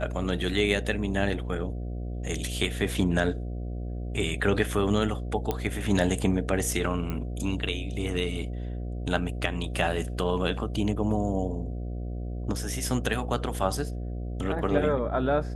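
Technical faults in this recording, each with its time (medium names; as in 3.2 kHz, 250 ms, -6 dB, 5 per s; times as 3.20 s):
buzz 60 Hz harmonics 12 -33 dBFS
5.51 s: pop -14 dBFS
7.10 s: pop -19 dBFS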